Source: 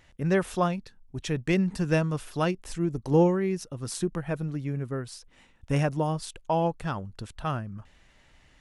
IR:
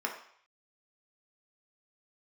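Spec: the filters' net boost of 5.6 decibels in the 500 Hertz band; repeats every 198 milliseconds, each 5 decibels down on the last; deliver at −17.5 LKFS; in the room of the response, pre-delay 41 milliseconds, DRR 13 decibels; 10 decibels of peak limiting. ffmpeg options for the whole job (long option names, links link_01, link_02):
-filter_complex "[0:a]equalizer=frequency=500:width_type=o:gain=7,alimiter=limit=-16dB:level=0:latency=1,aecho=1:1:198|396|594|792|990|1188|1386:0.562|0.315|0.176|0.0988|0.0553|0.031|0.0173,asplit=2[link_01][link_02];[1:a]atrim=start_sample=2205,adelay=41[link_03];[link_02][link_03]afir=irnorm=-1:irlink=0,volume=-18.5dB[link_04];[link_01][link_04]amix=inputs=2:normalize=0,volume=9.5dB"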